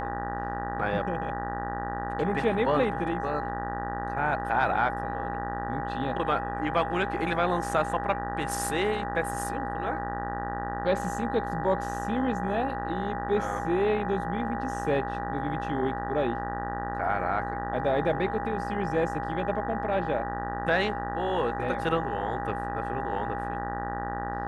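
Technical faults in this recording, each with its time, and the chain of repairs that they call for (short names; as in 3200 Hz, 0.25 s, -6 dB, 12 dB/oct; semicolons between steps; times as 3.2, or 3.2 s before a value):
buzz 60 Hz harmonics 32 -35 dBFS
tone 810 Hz -33 dBFS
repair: de-hum 60 Hz, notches 32; notch 810 Hz, Q 30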